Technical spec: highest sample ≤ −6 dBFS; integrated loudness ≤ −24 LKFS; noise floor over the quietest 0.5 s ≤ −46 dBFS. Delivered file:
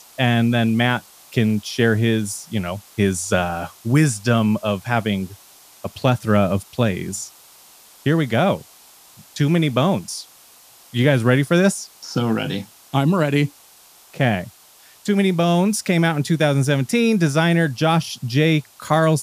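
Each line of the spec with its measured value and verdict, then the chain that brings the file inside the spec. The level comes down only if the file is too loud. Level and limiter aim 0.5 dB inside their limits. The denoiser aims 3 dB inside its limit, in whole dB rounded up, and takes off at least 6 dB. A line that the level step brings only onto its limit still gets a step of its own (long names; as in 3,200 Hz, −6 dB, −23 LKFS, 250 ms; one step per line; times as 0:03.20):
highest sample −3.0 dBFS: out of spec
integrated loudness −19.5 LKFS: out of spec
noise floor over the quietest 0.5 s −49 dBFS: in spec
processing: level −5 dB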